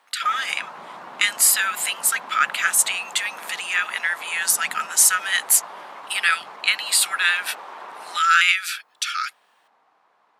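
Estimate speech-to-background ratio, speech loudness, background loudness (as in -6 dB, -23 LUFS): 18.5 dB, -20.0 LUFS, -38.5 LUFS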